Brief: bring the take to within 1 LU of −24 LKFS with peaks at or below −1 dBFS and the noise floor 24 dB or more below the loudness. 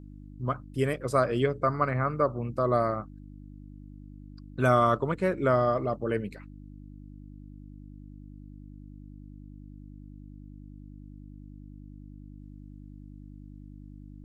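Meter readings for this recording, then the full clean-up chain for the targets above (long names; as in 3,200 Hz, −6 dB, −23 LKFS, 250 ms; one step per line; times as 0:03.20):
mains hum 50 Hz; hum harmonics up to 300 Hz; level of the hum −44 dBFS; integrated loudness −27.5 LKFS; sample peak −9.0 dBFS; target loudness −24.0 LKFS
→ hum removal 50 Hz, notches 6
level +3.5 dB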